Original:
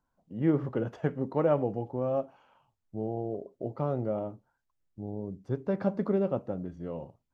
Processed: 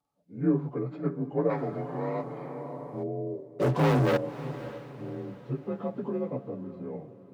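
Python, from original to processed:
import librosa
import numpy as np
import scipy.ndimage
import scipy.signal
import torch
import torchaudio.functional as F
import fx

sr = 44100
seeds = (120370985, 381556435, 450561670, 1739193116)

p1 = fx.partial_stretch(x, sr, pct=88)
p2 = fx.leveller(p1, sr, passes=5, at=(3.59, 4.17))
p3 = scipy.signal.sosfilt(scipy.signal.butter(2, 74.0, 'highpass', fs=sr, output='sos'), p2)
p4 = fx.peak_eq(p3, sr, hz=95.0, db=-3.5, octaves=0.77)
p5 = p4 + 0.43 * np.pad(p4, (int(7.0 * sr / 1000.0), 0))[:len(p4)]
p6 = p5 + fx.echo_diffused(p5, sr, ms=567, feedback_pct=43, wet_db=-14.0, dry=0)
y = fx.spectral_comp(p6, sr, ratio=2.0, at=(1.49, 3.02), fade=0.02)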